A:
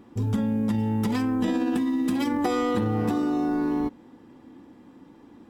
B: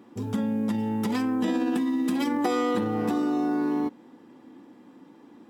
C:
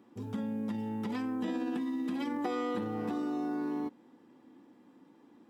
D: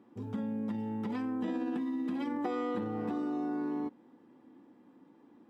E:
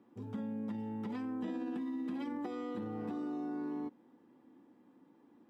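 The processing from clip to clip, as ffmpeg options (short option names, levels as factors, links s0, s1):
-af "highpass=180"
-filter_complex "[0:a]acrossover=split=4500[s0][s1];[s1]acompressor=threshold=0.00224:ratio=4:attack=1:release=60[s2];[s0][s2]amix=inputs=2:normalize=0,volume=0.376"
-af "highshelf=f=3300:g=-10"
-filter_complex "[0:a]acrossover=split=380|3000[s0][s1][s2];[s1]acompressor=threshold=0.01:ratio=6[s3];[s0][s3][s2]amix=inputs=3:normalize=0,volume=0.631"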